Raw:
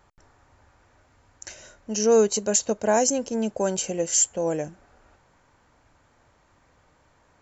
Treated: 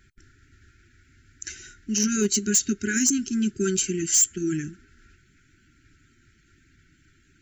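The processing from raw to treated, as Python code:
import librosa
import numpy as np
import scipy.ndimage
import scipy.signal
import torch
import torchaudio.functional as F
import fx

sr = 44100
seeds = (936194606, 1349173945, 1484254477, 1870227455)

y = fx.spec_quant(x, sr, step_db=15)
y = fx.brickwall_bandstop(y, sr, low_hz=410.0, high_hz=1300.0)
y = np.clip(y, -10.0 ** (-19.0 / 20.0), 10.0 ** (-19.0 / 20.0))
y = y * librosa.db_to_amplitude(4.5)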